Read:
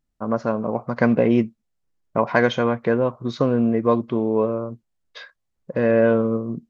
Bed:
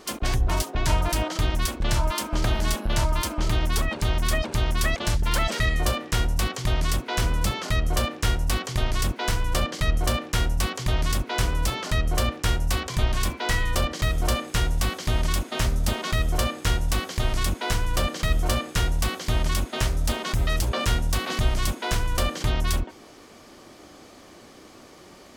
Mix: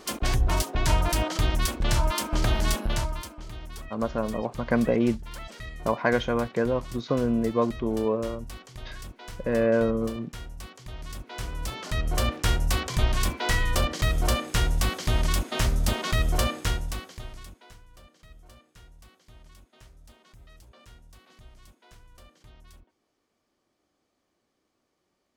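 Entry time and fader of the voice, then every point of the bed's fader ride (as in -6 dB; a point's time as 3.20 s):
3.70 s, -5.5 dB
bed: 2.84 s -0.5 dB
3.42 s -16.5 dB
10.92 s -16.5 dB
12.32 s -0.5 dB
16.55 s -0.5 dB
17.85 s -28.5 dB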